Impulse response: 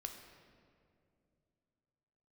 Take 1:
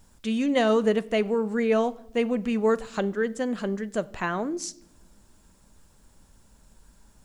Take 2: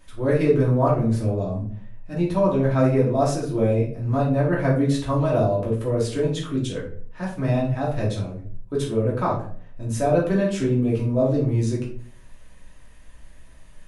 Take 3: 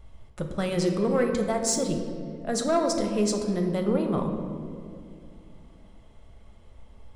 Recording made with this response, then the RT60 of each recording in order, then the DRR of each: 3; no single decay rate, 0.50 s, 2.5 s; 16.0 dB, -5.5 dB, 4.0 dB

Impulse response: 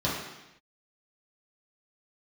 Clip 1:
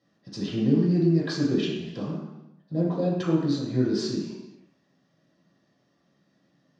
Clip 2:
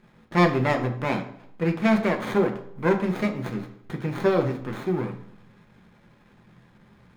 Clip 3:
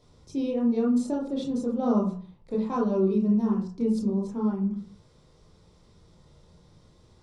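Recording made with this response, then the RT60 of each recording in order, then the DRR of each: 1; 0.90 s, 0.70 s, 0.45 s; -8.5 dB, 4.5 dB, -2.5 dB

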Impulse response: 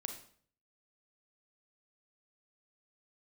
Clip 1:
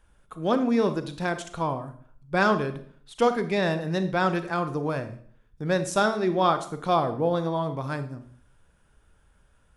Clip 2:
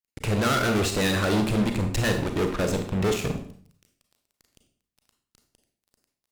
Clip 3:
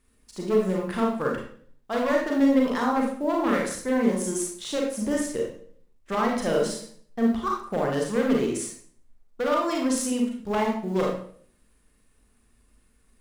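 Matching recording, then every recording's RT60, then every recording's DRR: 2; 0.55 s, 0.55 s, 0.55 s; 9.5 dB, 5.0 dB, -1.5 dB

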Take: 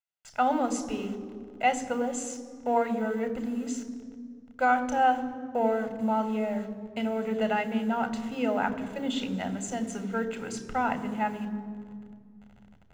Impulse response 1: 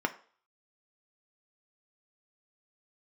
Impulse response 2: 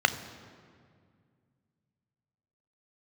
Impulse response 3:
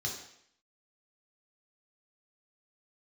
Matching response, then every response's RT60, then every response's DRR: 2; 0.45 s, 2.1 s, 0.65 s; 5.5 dB, 10.0 dB, -1.5 dB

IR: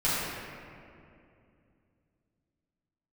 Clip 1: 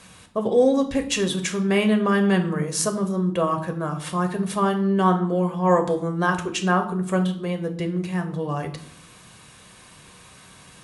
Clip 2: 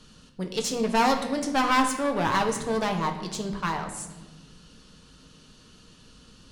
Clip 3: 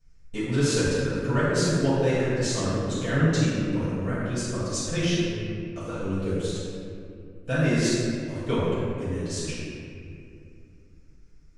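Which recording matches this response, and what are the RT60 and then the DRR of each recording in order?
3; 0.65 s, 1.3 s, 2.5 s; 5.5 dB, 3.5 dB, -12.5 dB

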